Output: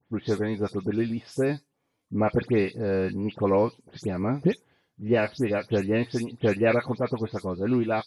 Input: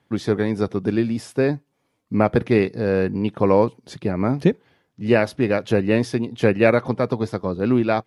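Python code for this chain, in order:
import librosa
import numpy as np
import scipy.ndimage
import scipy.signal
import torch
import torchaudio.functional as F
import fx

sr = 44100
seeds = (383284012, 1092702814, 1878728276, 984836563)

y = fx.spec_delay(x, sr, highs='late', ms=128)
y = F.gain(torch.from_numpy(y), -5.5).numpy()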